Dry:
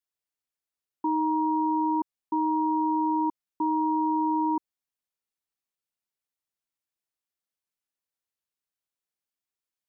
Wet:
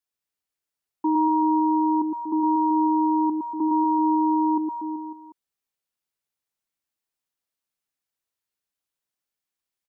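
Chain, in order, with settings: reverse bouncing-ball echo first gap 110 ms, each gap 1.15×, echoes 5; dynamic bell 310 Hz, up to +5 dB, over -41 dBFS, Q 2.4; trim +1 dB

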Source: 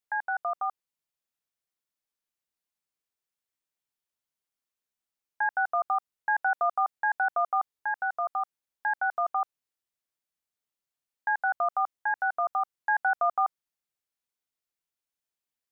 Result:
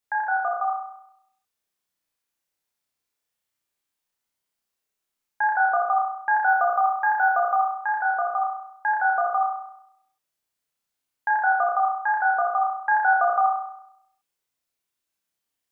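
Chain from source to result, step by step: flutter echo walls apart 5.6 m, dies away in 0.77 s; 6.47–7.72 s: decimation joined by straight lines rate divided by 2×; trim +3.5 dB

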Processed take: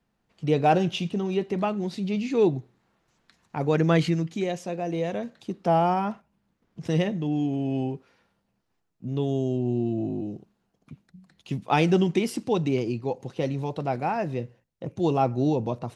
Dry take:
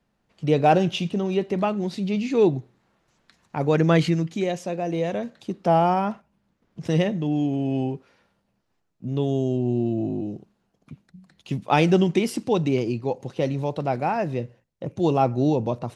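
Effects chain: band-stop 580 Hz, Q 15; trim -2.5 dB

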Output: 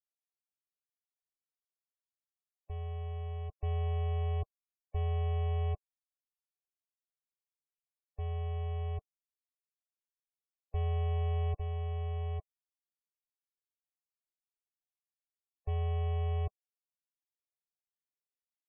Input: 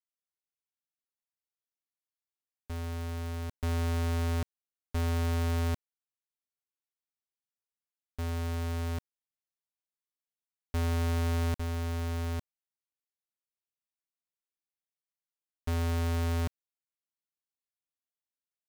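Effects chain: comb 2.7 ms, depth 62%; loudest bins only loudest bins 32; static phaser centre 610 Hz, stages 4; trim -2.5 dB

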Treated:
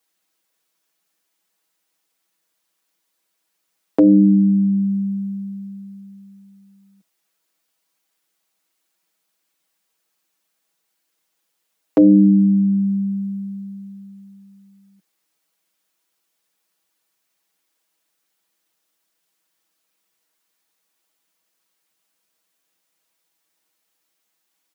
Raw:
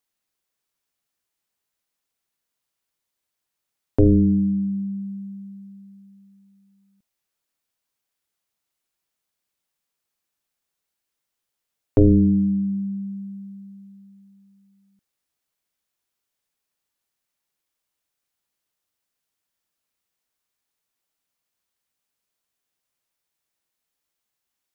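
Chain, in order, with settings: steep high-pass 170 Hz; comb 6.2 ms, depth 92%; in parallel at 0 dB: compression, threshold -22 dBFS, peak gain reduction 12 dB

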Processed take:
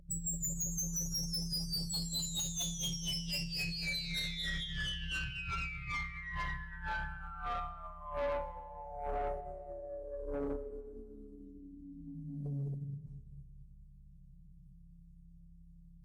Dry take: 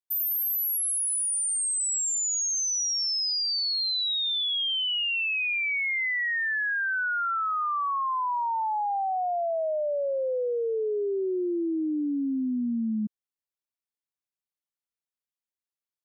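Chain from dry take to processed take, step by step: treble shelf 3.4 kHz +12 dB; inharmonic resonator 250 Hz, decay 0.63 s, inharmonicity 0.002; on a send: echo whose repeats swap between lows and highs 112 ms, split 2.1 kHz, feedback 77%, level -12.5 dB; on the sum: hum 60 Hz, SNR 24 dB; in parallel at -3 dB: compressor with a negative ratio -40 dBFS, ratio -0.5; on the sum: formant-preserving pitch shift -10 st; hum notches 60/120/180/240/300/360/420 Hz; hard clipper -30.5 dBFS, distortion -12 dB; peaking EQ 570 Hz +9.5 dB 0.31 oct; saturation -31.5 dBFS, distortion -16 dB; algorithmic reverb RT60 1.8 s, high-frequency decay 0.6×, pre-delay 35 ms, DRR 16.5 dB

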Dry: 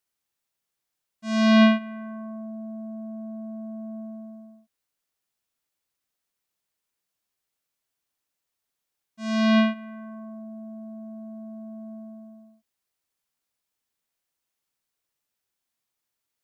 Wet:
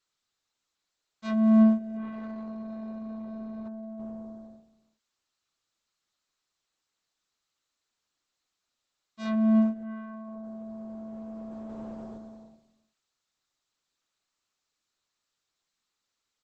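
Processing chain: 1.63–3.68 s: median filter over 41 samples; low-pass that closes with the level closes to 460 Hz, closed at -23.5 dBFS; graphic EQ with 31 bands 160 Hz -12 dB, 315 Hz +4 dB, 1.25 kHz +7 dB, 4 kHz +8 dB; delay 326 ms -20 dB; Opus 10 kbps 48 kHz

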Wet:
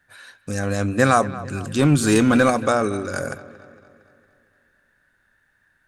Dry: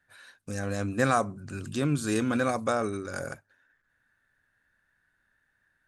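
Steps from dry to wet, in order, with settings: 1.79–2.50 s: waveshaping leveller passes 1; feedback echo behind a low-pass 229 ms, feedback 54%, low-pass 3.8 kHz, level -17 dB; trim +8 dB

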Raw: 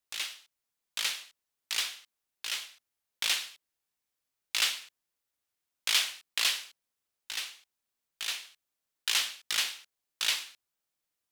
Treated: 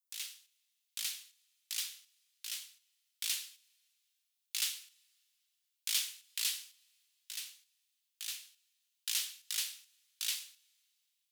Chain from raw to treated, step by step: differentiator; two-slope reverb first 0.36 s, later 2.6 s, from -18 dB, DRR 17.5 dB; trim -3 dB

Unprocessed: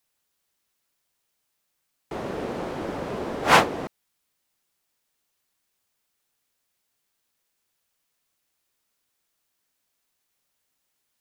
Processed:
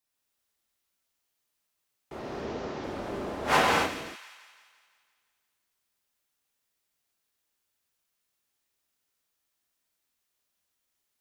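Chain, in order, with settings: 2.19–2.84 s: CVSD coder 32 kbps; feedback echo behind a high-pass 171 ms, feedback 56%, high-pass 1.7 kHz, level -11 dB; gated-style reverb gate 300 ms flat, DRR -3 dB; trim -9 dB

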